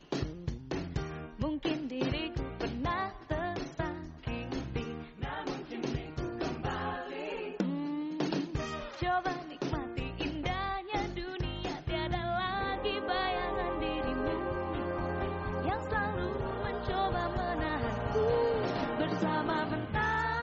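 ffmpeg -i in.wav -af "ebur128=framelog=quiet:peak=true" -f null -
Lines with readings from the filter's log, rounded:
Integrated loudness:
  I:         -34.4 LUFS
  Threshold: -44.4 LUFS
Loudness range:
  LRA:         5.3 LU
  Threshold: -54.6 LUFS
  LRA low:   -37.4 LUFS
  LRA high:  -32.0 LUFS
True peak:
  Peak:      -17.8 dBFS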